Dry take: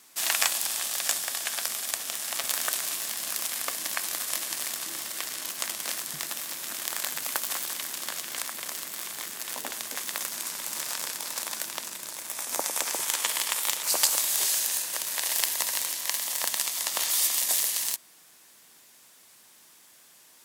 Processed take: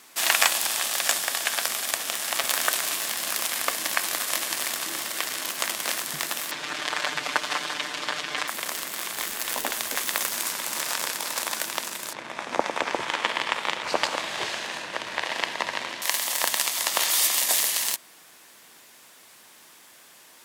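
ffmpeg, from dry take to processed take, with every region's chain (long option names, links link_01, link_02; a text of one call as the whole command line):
ffmpeg -i in.wav -filter_complex "[0:a]asettb=1/sr,asplit=3[link_01][link_02][link_03];[link_01]atrim=end=6.514[link_04];[link_02]atrim=start=6.51:end=8.48,asetpts=PTS-STARTPTS,afade=type=in:duration=0.004:curve=qsin,afade=type=out:start_time=1.966:duration=0.004:curve=qsin,lowpass=4600,aecho=1:1:6.7:0.83,atrim=end_sample=86877[link_05];[link_03]atrim=start=8.476[link_06];[link_04][link_05]acrossfade=duration=0.004:curve1=hsin:curve2=qsin[link_07];[link_07][link_06]acrossfade=duration=0.004:curve1=qsin:curve2=hsin,asettb=1/sr,asplit=3[link_08][link_09][link_10];[link_08]atrim=end=9.174[link_11];[link_09]atrim=start=9.17:end=10.53,asetpts=PTS-STARTPTS,afade=type=in:duration=0.004:curve=qsin,afade=type=out:start_time=1.356:duration=0.004:curve=qsin,lowpass=frequency=3800:poles=1,aemphasis=mode=production:type=50kf,acrusher=bits=8:dc=4:mix=0:aa=0.000001[link_12];[link_10]atrim=start=10.526[link_13];[link_11][link_12]acrossfade=duration=0.004:curve1=hsin:curve2=qsin[link_14];[link_14][link_13]acrossfade=duration=0.004:curve1=qsin:curve2=hsin,asettb=1/sr,asplit=3[link_15][link_16][link_17];[link_15]atrim=end=12.134[link_18];[link_16]atrim=start=12.13:end=16.02,asetpts=PTS-STARTPTS,afade=type=in:duration=0.004:curve=qsin,afade=type=out:start_time=3.886:duration=0.004:curve=qsin,lowpass=3000,lowshelf=frequency=290:gain=8.5[link_19];[link_17]atrim=start=16.016[link_20];[link_18][link_19]acrossfade=duration=0.004:curve1=hsin:curve2=qsin[link_21];[link_21][link_20]acrossfade=duration=0.004:curve1=qsin:curve2=hsin,bass=frequency=250:gain=-4,treble=frequency=4000:gain=-6,acontrast=67,volume=1.5dB" out.wav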